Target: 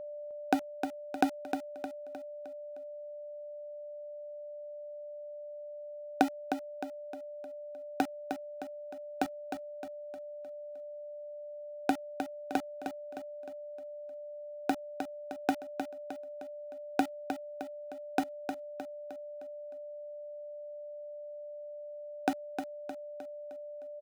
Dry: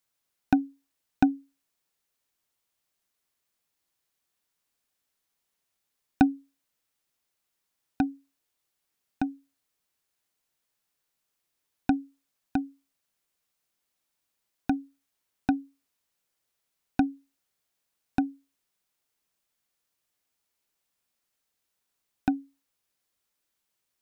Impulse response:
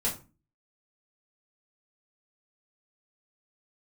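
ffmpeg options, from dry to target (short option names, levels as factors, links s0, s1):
-filter_complex "[0:a]acompressor=threshold=0.00562:ratio=1.5,highpass=f=450:t=q:w=4.6,aeval=exprs='val(0)*gte(abs(val(0)),0.01)':c=same,aeval=exprs='val(0)+0.00501*sin(2*PI*590*n/s)':c=same,asplit=2[s0][s1];[s1]aecho=0:1:308|616|924|1232|1540:0.422|0.198|0.0932|0.0438|0.0206[s2];[s0][s2]amix=inputs=2:normalize=0,volume=2.11"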